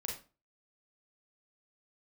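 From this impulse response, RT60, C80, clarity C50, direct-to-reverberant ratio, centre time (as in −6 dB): 0.35 s, 12.0 dB, 5.0 dB, −1.0 dB, 30 ms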